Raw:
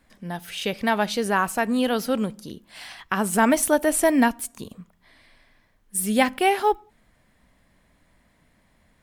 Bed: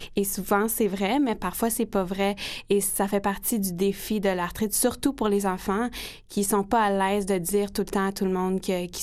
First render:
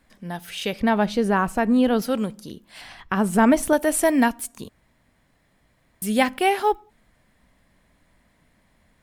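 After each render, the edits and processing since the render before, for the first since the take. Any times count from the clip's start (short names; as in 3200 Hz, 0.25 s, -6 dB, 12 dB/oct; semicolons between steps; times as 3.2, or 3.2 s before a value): 0.8–2.02 tilt -2.5 dB/oct; 2.81–3.73 tilt -2 dB/oct; 4.69–6.02 room tone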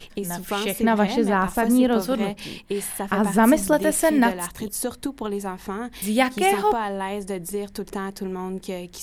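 add bed -4.5 dB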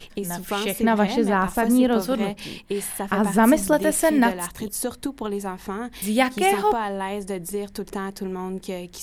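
nothing audible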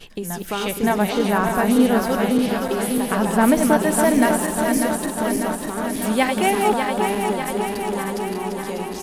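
regenerating reverse delay 0.298 s, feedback 81%, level -5 dB; echo 0.193 s -16.5 dB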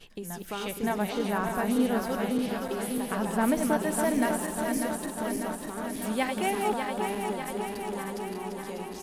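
gain -9.5 dB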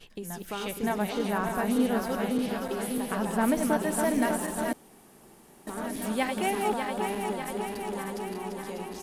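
4.73–5.67 room tone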